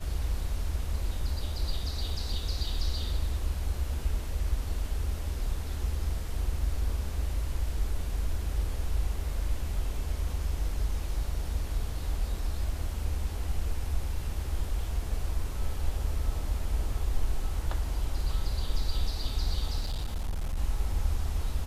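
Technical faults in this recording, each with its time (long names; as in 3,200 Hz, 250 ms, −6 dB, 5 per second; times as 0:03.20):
0:19.80–0:20.57: clipping −27.5 dBFS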